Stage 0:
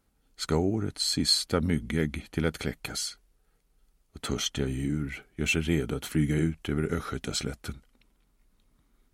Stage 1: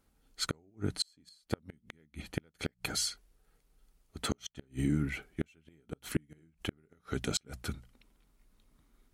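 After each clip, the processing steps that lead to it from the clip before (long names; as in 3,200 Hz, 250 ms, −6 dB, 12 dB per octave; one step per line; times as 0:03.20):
mains-hum notches 60/120/180 Hz
gate with flip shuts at −18 dBFS, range −37 dB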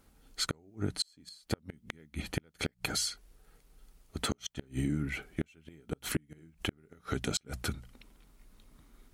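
downward compressor 2.5 to 1, threshold −41 dBFS, peak gain reduction 11 dB
level +8 dB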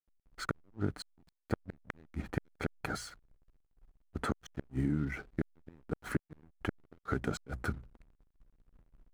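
high shelf with overshoot 2,200 Hz −11 dB, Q 1.5
slack as between gear wheels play −47.5 dBFS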